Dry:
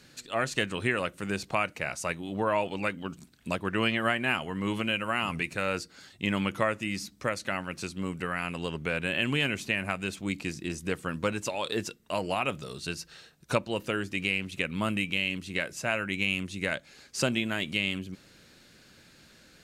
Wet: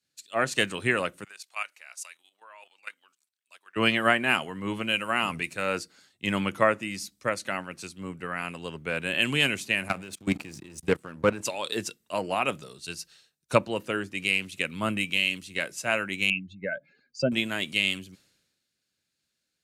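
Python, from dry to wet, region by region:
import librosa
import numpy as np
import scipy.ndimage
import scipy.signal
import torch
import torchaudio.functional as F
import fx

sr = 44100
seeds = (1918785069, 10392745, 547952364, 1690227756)

y = fx.chain(x, sr, fx.highpass(hz=1200.0, slope=12),
    fx.level_steps(step_db=10), at=(1.24, 3.76))
y = fx.chain(y, sr, fx.high_shelf(hz=2100.0, db=-4.0),
    fx.level_steps(step_db=15),
    fx.leveller(passes=2), at=(9.88, 11.41))
y = fx.chain(y, sr, fx.spec_expand(power=2.4),
    fx.lowpass(hz=4500.0, slope=12), at=(16.3, 17.32))
y = fx.highpass(y, sr, hz=150.0, slope=6)
y = fx.peak_eq(y, sr, hz=10000.0, db=4.5, octaves=0.93)
y = fx.band_widen(y, sr, depth_pct=100)
y = F.gain(torch.from_numpy(y), 1.5).numpy()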